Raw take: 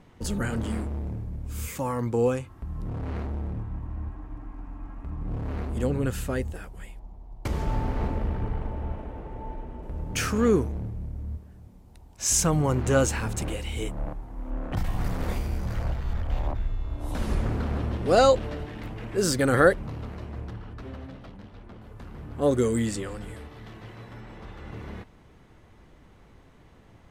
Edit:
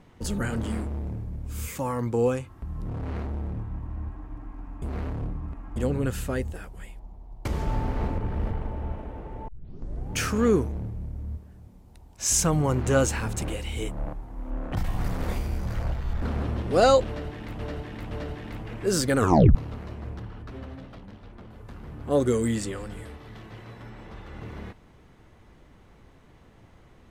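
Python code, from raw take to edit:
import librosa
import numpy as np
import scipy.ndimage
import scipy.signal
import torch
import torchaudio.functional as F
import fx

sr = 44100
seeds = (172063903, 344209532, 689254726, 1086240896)

y = fx.edit(x, sr, fx.reverse_span(start_s=4.82, length_s=0.94),
    fx.reverse_span(start_s=8.18, length_s=0.33),
    fx.tape_start(start_s=9.48, length_s=0.65),
    fx.cut(start_s=16.22, length_s=1.35),
    fx.repeat(start_s=18.42, length_s=0.52, count=3),
    fx.tape_stop(start_s=19.49, length_s=0.37), tone=tone)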